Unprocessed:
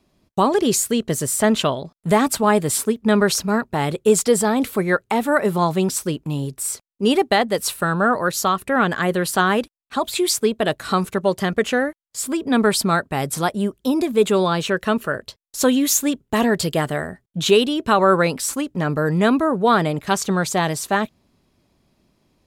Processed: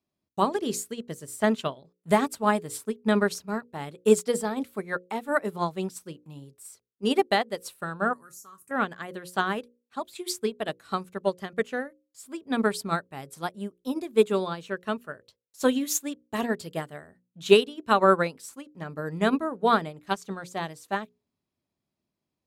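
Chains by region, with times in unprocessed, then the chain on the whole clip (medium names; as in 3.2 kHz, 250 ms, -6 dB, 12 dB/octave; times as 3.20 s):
8.13–8.71 s: FFT filter 370 Hz 0 dB, 660 Hz -13 dB, 1.2 kHz +2 dB, 3.6 kHz -11 dB, 6.2 kHz +15 dB + compression 4:1, threshold -16 dBFS + feedback comb 140 Hz, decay 0.15 s, mix 80%
whole clip: high-pass 67 Hz; hum notches 60/120/180/240/300/360/420/480/540 Hz; upward expansion 2.5:1, over -25 dBFS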